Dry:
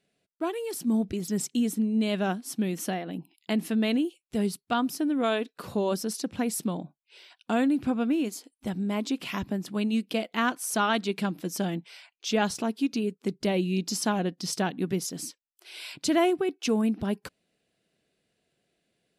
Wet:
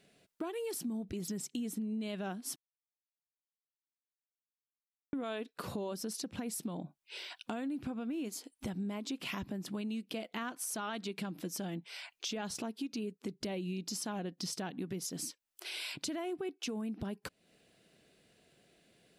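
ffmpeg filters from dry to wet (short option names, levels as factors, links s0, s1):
-filter_complex "[0:a]asplit=3[s0][s1][s2];[s0]atrim=end=2.56,asetpts=PTS-STARTPTS,afade=t=out:st=2.556:d=0.004:c=hsin[s3];[s1]atrim=start=2.56:end=5.13,asetpts=PTS-STARTPTS,volume=0[s4];[s2]atrim=start=5.13,asetpts=PTS-STARTPTS,afade=t=in:d=0.004:c=hsin[s5];[s3][s4][s5]concat=n=3:v=0:a=1,alimiter=limit=0.0631:level=0:latency=1:release=150,acompressor=threshold=0.00316:ratio=3,volume=2.66"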